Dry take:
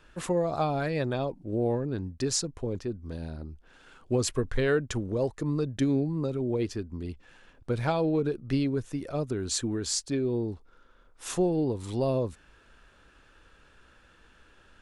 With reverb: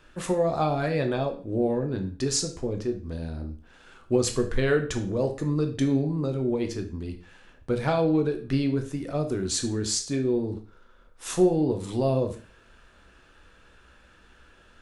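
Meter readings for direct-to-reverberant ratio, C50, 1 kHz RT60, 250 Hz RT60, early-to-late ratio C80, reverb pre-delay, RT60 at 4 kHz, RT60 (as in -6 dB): 5.0 dB, 11.0 dB, 0.40 s, 0.35 s, 15.5 dB, 6 ms, 0.40 s, 0.40 s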